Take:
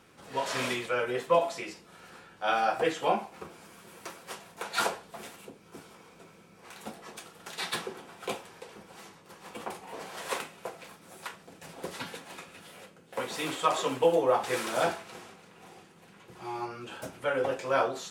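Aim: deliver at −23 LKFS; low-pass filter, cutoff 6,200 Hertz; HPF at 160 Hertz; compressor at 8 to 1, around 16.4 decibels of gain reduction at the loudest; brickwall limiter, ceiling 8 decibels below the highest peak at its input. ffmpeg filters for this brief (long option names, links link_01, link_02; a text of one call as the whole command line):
ffmpeg -i in.wav -af "highpass=160,lowpass=6200,acompressor=threshold=-36dB:ratio=8,volume=21.5dB,alimiter=limit=-10.5dB:level=0:latency=1" out.wav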